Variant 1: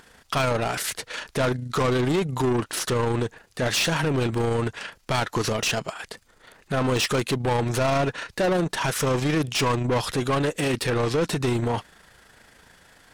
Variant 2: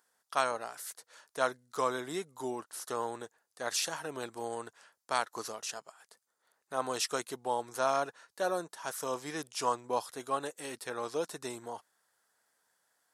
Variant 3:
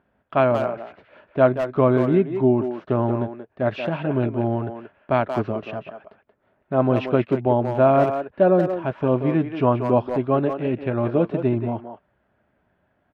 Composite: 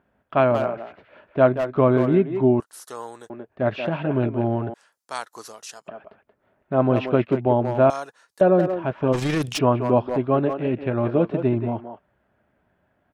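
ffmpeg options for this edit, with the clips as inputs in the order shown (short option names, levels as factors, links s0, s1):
-filter_complex "[1:a]asplit=3[s0][s1][s2];[2:a]asplit=5[s3][s4][s5][s6][s7];[s3]atrim=end=2.602[s8];[s0]atrim=start=2.598:end=3.302[s9];[s4]atrim=start=3.298:end=4.742[s10];[s1]atrim=start=4.738:end=5.882[s11];[s5]atrim=start=5.878:end=7.902[s12];[s2]atrim=start=7.898:end=8.412[s13];[s6]atrim=start=8.408:end=9.14[s14];[0:a]atrim=start=9.12:end=9.59[s15];[s7]atrim=start=9.57[s16];[s8][s9]acrossfade=d=0.004:c1=hsin:c2=hsin[s17];[s17][s10]acrossfade=d=0.004:c1=hsin:c2=hsin[s18];[s18][s11]acrossfade=d=0.004:c1=hsin:c2=hsin[s19];[s19][s12]acrossfade=d=0.004:c1=hsin:c2=hsin[s20];[s20][s13]acrossfade=d=0.004:c1=hsin:c2=hsin[s21];[s21][s14]acrossfade=d=0.004:c1=hsin:c2=hsin[s22];[s22][s15]acrossfade=d=0.02:c1=tri:c2=tri[s23];[s23][s16]acrossfade=d=0.02:c1=tri:c2=tri"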